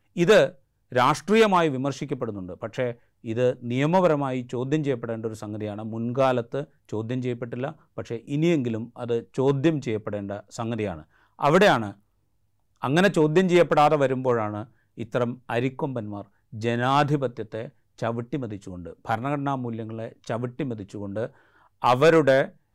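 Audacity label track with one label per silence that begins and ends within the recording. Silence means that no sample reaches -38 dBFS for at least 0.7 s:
11.920000	12.820000	silence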